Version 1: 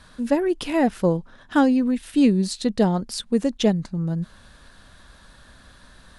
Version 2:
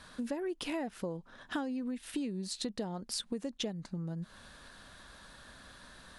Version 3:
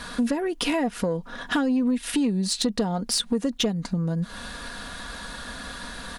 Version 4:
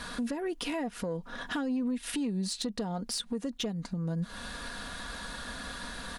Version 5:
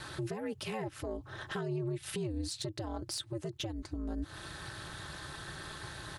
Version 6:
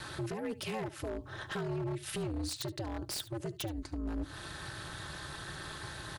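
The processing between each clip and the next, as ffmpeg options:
ffmpeg -i in.wav -filter_complex "[0:a]asplit=2[link_01][link_02];[link_02]alimiter=limit=-16.5dB:level=0:latency=1:release=80,volume=0dB[link_03];[link_01][link_03]amix=inputs=2:normalize=0,acompressor=threshold=-24dB:ratio=12,lowshelf=frequency=130:gain=-9,volume=-8dB" out.wav
ffmpeg -i in.wav -filter_complex "[0:a]aecho=1:1:4.2:0.45,asplit=2[link_01][link_02];[link_02]acompressor=threshold=-42dB:ratio=6,volume=1dB[link_03];[link_01][link_03]amix=inputs=2:normalize=0,aeval=exprs='0.133*sin(PI/2*1.58*val(0)/0.133)':channel_layout=same,volume=1.5dB" out.wav
ffmpeg -i in.wav -af "alimiter=limit=-22.5dB:level=0:latency=1:release=327,volume=-3.5dB" out.wav
ffmpeg -i in.wav -af "aeval=exprs='val(0)*sin(2*PI*110*n/s)':channel_layout=same,volume=-1.5dB" out.wav
ffmpeg -i in.wav -filter_complex "[0:a]acrossover=split=380|970[link_01][link_02][link_03];[link_03]aeval=exprs='(mod(28.2*val(0)+1,2)-1)/28.2':channel_layout=same[link_04];[link_01][link_02][link_04]amix=inputs=3:normalize=0,aecho=1:1:73:0.133,aeval=exprs='0.0282*(abs(mod(val(0)/0.0282+3,4)-2)-1)':channel_layout=same,volume=1dB" out.wav

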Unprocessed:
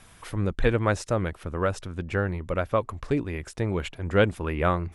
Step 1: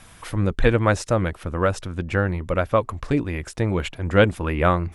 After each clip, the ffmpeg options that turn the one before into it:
ffmpeg -i in.wav -af "bandreject=frequency=410:width=12,volume=5dB" out.wav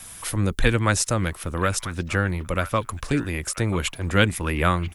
ffmpeg -i in.wav -filter_complex "[0:a]aemphasis=mode=production:type=75fm,acrossover=split=380|880|3700[link_01][link_02][link_03][link_04];[link_02]acompressor=threshold=-33dB:ratio=6[link_05];[link_03]aecho=1:1:988:0.266[link_06];[link_01][link_05][link_06][link_04]amix=inputs=4:normalize=0" out.wav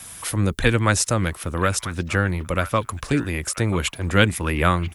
ffmpeg -i in.wav -af "highpass=41,volume=2dB" out.wav

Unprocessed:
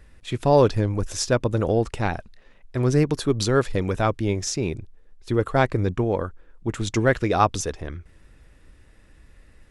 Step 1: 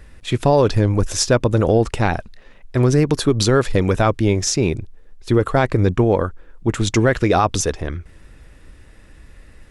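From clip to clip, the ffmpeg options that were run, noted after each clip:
ffmpeg -i in.wav -af "alimiter=limit=-13dB:level=0:latency=1:release=68,volume=7.5dB" out.wav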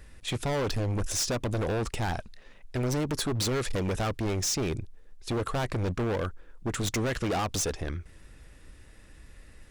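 ffmpeg -i in.wav -af "highshelf=frequency=3700:gain=6,volume=19dB,asoftclip=hard,volume=-19dB,volume=-7dB" out.wav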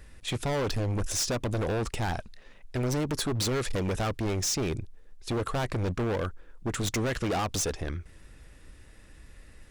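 ffmpeg -i in.wav -af anull out.wav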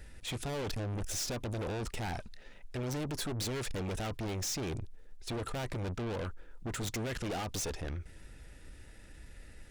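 ffmpeg -i in.wav -af "asuperstop=centerf=1100:order=12:qfactor=6.4,aeval=exprs='(tanh(50.1*val(0)+0.2)-tanh(0.2))/50.1':channel_layout=same" out.wav

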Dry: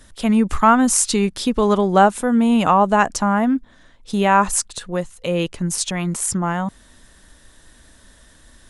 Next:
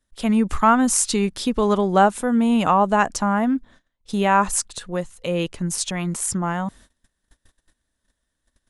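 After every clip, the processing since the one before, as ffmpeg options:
ffmpeg -i in.wav -af "agate=range=-25dB:threshold=-43dB:ratio=16:detection=peak,volume=-2.5dB" out.wav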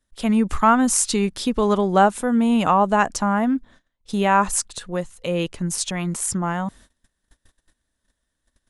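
ffmpeg -i in.wav -af anull out.wav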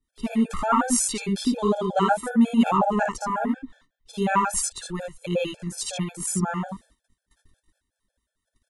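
ffmpeg -i in.wav -filter_complex "[0:a]acrossover=split=690[link_01][link_02];[link_01]aeval=exprs='val(0)*(1-0.7/2+0.7/2*cos(2*PI*4.7*n/s))':channel_layout=same[link_03];[link_02]aeval=exprs='val(0)*(1-0.7/2-0.7/2*cos(2*PI*4.7*n/s))':channel_layout=same[link_04];[link_03][link_04]amix=inputs=2:normalize=0,aecho=1:1:57|78:0.562|0.631,afftfilt=real='re*gt(sin(2*PI*5.5*pts/sr)*(1-2*mod(floor(b*sr/1024/450),2)),0)':imag='im*gt(sin(2*PI*5.5*pts/sr)*(1-2*mod(floor(b*sr/1024/450),2)),0)':win_size=1024:overlap=0.75" out.wav

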